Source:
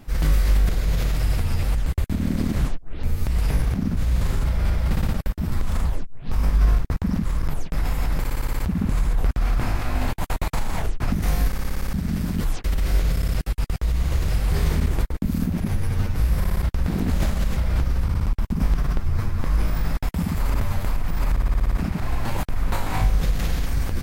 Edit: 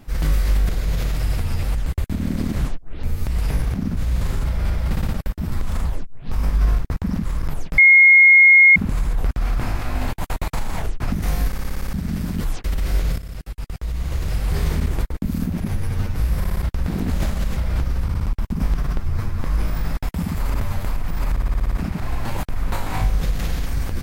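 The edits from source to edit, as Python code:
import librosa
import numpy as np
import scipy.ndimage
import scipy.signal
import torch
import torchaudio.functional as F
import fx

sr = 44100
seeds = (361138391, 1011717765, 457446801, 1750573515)

y = fx.edit(x, sr, fx.bleep(start_s=7.78, length_s=0.98, hz=2150.0, db=-6.5),
    fx.fade_in_from(start_s=13.18, length_s=1.31, floor_db=-12.0), tone=tone)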